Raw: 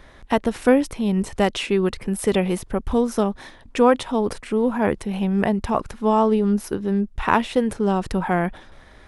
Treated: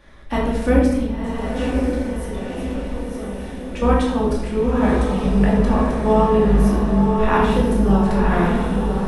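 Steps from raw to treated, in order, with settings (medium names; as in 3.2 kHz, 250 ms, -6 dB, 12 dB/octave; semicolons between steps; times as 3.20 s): octave divider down 2 oct, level -2 dB; 1.03–3.82 s: compression, threshold -31 dBFS, peak gain reduction 17 dB; echo that smears into a reverb 1034 ms, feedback 53%, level -4 dB; simulated room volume 430 m³, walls mixed, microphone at 2.4 m; trim -6.5 dB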